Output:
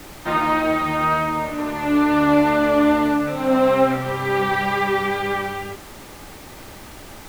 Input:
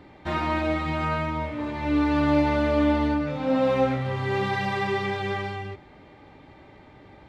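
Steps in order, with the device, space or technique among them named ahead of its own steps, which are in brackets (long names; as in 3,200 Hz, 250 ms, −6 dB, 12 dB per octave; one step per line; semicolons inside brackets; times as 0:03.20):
horn gramophone (band-pass filter 180–4,100 Hz; parametric band 1,300 Hz +5 dB 0.52 octaves; tape wow and flutter 12 cents; pink noise bed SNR 20 dB)
level +5.5 dB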